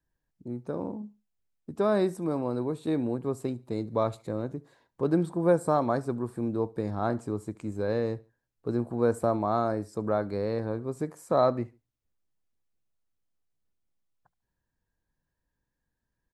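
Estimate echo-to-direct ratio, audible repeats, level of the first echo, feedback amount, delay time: -23.5 dB, 2, -24.0 dB, 36%, 72 ms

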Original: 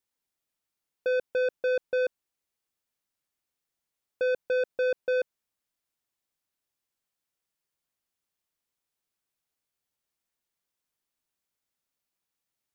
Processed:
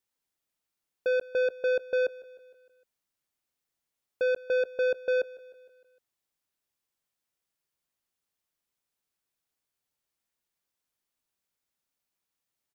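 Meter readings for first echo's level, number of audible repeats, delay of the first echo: -21.0 dB, 3, 153 ms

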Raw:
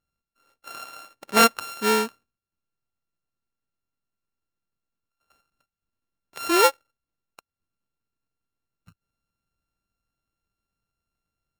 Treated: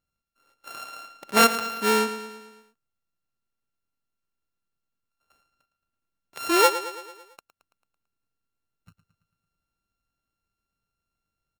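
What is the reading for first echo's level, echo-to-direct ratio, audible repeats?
-13.0 dB, -11.5 dB, 5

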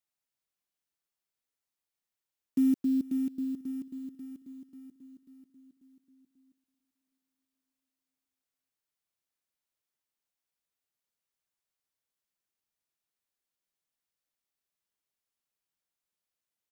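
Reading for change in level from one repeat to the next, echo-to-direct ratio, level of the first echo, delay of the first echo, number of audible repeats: -4.5 dB, -19.5 dB, -21.5 dB, 435 ms, 3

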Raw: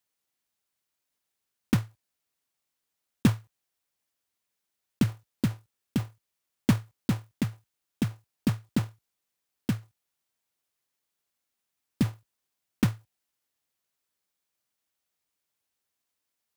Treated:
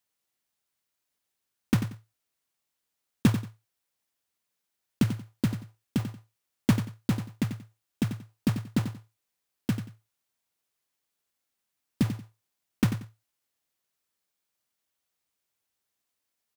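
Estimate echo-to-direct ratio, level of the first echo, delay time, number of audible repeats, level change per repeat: -10.0 dB, -10.0 dB, 91 ms, 2, -12.5 dB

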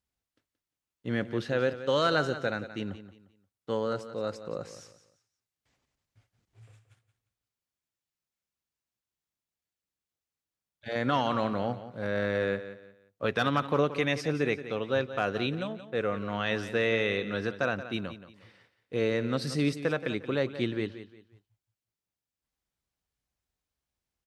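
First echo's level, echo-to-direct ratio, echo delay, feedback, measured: -13.0 dB, -12.5 dB, 176 ms, 30%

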